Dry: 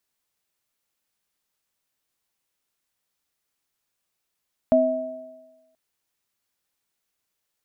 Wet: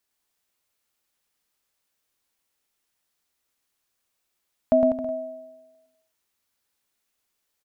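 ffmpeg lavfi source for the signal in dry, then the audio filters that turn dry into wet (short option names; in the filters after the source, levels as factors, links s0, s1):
-f lavfi -i "aevalsrc='0.119*pow(10,-3*t/1.08)*sin(2*PI*256*t)+0.224*pow(10,-3*t/1.21)*sin(2*PI*643*t)':d=1.03:s=44100"
-af "equalizer=f=150:w=2.6:g=-4.5,aecho=1:1:110|198|268.4|324.7|369.8:0.631|0.398|0.251|0.158|0.1"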